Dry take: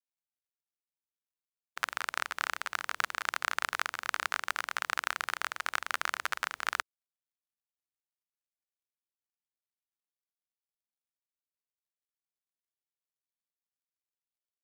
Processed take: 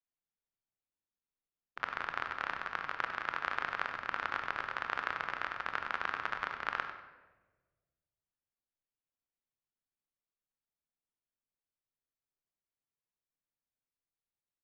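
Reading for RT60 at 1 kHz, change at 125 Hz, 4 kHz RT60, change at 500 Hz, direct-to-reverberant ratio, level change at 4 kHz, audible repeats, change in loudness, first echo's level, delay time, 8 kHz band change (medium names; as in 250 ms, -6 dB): 1.1 s, no reading, 0.75 s, +0.5 dB, 5.0 dB, -8.5 dB, 1, -3.0 dB, -12.0 dB, 97 ms, under -20 dB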